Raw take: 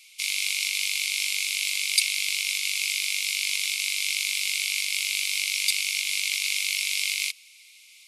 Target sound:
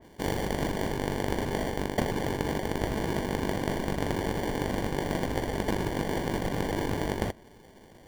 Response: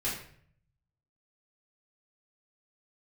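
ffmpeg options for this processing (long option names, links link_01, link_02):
-af "bandreject=frequency=3500:width=7.5,acrusher=samples=34:mix=1:aa=0.000001,areverse,acompressor=threshold=-23dB:ratio=6,areverse,adynamicequalizer=threshold=0.00501:dfrequency=2900:dqfactor=0.7:tfrequency=2900:tqfactor=0.7:attack=5:release=100:ratio=0.375:range=2:mode=cutabove:tftype=highshelf"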